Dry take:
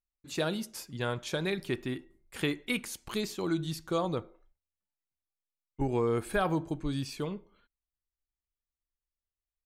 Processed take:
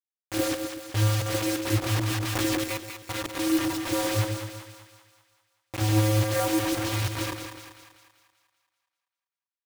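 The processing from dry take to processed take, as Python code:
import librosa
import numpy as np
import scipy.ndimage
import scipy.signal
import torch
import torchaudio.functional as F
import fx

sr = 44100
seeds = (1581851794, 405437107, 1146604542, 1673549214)

p1 = fx.spec_swells(x, sr, rise_s=0.35)
p2 = fx.vocoder(p1, sr, bands=16, carrier='square', carrier_hz=107.0)
p3 = (np.mod(10.0 ** (35.5 / 20.0) * p2 + 1.0, 2.0) - 1.0) / 10.0 ** (35.5 / 20.0)
p4 = p2 + (p3 * 10.0 ** (-10.0 / 20.0))
p5 = fx.quant_dither(p4, sr, seeds[0], bits=6, dither='none')
p6 = p5 + fx.echo_split(p5, sr, split_hz=760.0, low_ms=125, high_ms=194, feedback_pct=52, wet_db=-7.0, dry=0)
p7 = fx.env_flatten(p6, sr, amount_pct=70, at=(1.96, 2.64))
y = p7 * 10.0 ** (6.0 / 20.0)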